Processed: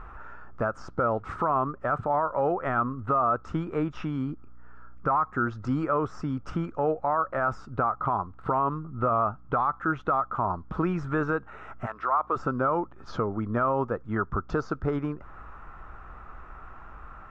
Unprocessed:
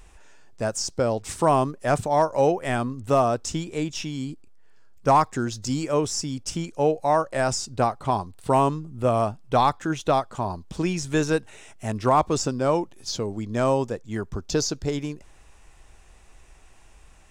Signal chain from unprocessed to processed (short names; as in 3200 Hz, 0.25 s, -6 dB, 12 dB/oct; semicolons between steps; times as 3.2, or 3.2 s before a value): synth low-pass 1300 Hz, resonance Q 9.5; compressor 1.5:1, threshold -41 dBFS, peak gain reduction 12.5 dB; limiter -21.5 dBFS, peak gain reduction 10 dB; 11.85–12.35 HPF 970 Hz -> 390 Hz 12 dB/oct; hum 60 Hz, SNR 28 dB; gain +5.5 dB